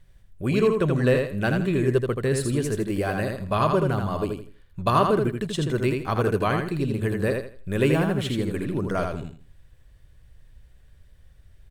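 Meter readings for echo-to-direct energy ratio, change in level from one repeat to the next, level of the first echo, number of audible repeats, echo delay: −4.0 dB, −11.5 dB, −4.5 dB, 3, 81 ms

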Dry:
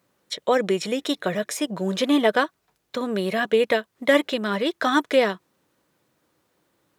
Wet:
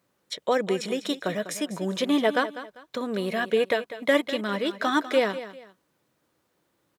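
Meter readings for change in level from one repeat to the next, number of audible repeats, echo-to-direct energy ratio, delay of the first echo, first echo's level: −10.5 dB, 2, −13.0 dB, 198 ms, −13.5 dB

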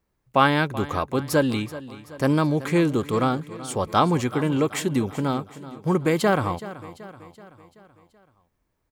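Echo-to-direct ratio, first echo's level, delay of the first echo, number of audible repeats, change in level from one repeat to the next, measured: −14.5 dB, −16.0 dB, 380 ms, 4, −5.5 dB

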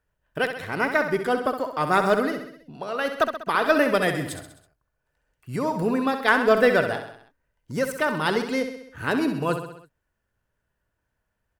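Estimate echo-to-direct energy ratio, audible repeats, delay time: −7.0 dB, 5, 65 ms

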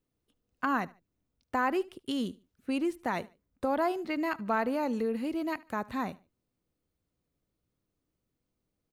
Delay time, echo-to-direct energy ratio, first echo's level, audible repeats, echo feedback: 74 ms, −21.5 dB, −22.0 dB, 2, 31%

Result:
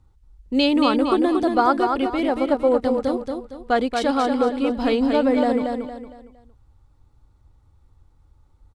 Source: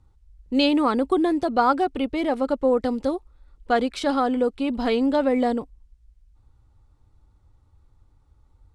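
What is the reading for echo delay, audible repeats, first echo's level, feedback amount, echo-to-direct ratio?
230 ms, 4, −5.0 dB, 35%, −4.5 dB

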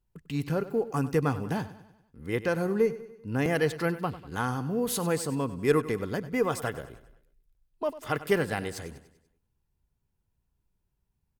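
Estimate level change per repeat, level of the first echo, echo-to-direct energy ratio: −6.0 dB, −15.5 dB, −14.0 dB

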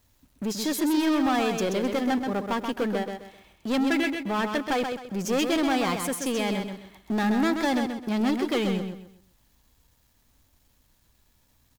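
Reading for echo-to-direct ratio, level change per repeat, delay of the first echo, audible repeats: −5.5 dB, −10.5 dB, 130 ms, 3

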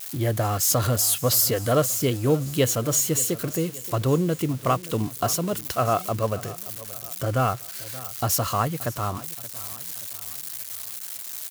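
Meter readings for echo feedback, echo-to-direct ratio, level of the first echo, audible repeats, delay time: 48%, −17.0 dB, −18.0 dB, 3, 576 ms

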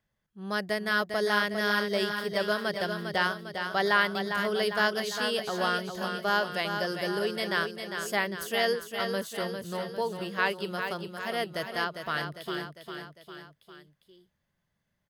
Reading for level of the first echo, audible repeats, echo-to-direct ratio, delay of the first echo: −7.0 dB, 4, −5.5 dB, 402 ms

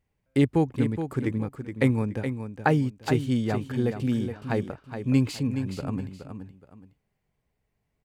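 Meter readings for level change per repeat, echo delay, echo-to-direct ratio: −11.0 dB, 421 ms, −8.0 dB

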